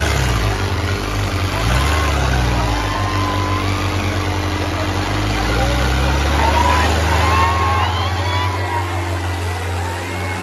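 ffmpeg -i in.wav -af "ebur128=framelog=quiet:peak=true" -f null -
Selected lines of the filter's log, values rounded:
Integrated loudness:
  I:         -17.7 LUFS
  Threshold: -27.7 LUFS
Loudness range:
  LRA:         2.8 LU
  Threshold: -37.3 LUFS
  LRA low:   -18.5 LUFS
  LRA high:  -15.8 LUFS
True peak:
  Peak:       -2.3 dBFS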